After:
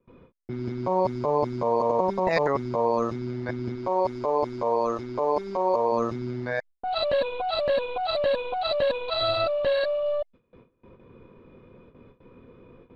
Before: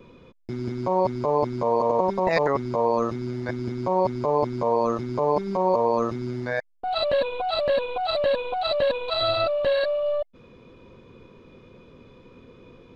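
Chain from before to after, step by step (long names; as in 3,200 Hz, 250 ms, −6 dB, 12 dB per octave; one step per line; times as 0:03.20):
noise gate with hold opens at −40 dBFS
low-pass that shuts in the quiet parts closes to 1,900 Hz, open at −18 dBFS
0:03.75–0:05.92: parametric band 160 Hz −14 dB 0.72 octaves
level −1.5 dB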